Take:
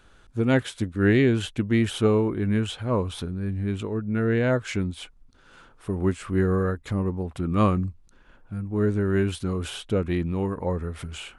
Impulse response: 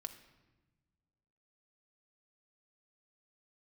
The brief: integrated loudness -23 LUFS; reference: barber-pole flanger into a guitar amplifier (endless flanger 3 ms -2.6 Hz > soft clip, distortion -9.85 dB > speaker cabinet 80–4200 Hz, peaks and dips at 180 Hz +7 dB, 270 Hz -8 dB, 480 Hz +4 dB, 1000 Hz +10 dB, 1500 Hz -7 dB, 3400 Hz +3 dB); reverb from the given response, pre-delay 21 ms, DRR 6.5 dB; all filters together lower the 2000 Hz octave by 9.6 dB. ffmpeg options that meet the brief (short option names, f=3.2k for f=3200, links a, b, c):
-filter_complex "[0:a]equalizer=f=2k:t=o:g=-9,asplit=2[a][b];[1:a]atrim=start_sample=2205,adelay=21[c];[b][c]afir=irnorm=-1:irlink=0,volume=-3dB[d];[a][d]amix=inputs=2:normalize=0,asplit=2[e][f];[f]adelay=3,afreqshift=-2.6[g];[e][g]amix=inputs=2:normalize=1,asoftclip=threshold=-23.5dB,highpass=80,equalizer=f=180:t=q:w=4:g=7,equalizer=f=270:t=q:w=4:g=-8,equalizer=f=480:t=q:w=4:g=4,equalizer=f=1k:t=q:w=4:g=10,equalizer=f=1.5k:t=q:w=4:g=-7,equalizer=f=3.4k:t=q:w=4:g=3,lowpass=f=4.2k:w=0.5412,lowpass=f=4.2k:w=1.3066,volume=6.5dB"